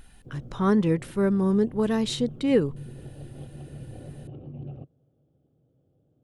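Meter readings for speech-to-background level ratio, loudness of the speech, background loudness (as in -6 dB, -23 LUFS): 18.5 dB, -24.5 LUFS, -43.0 LUFS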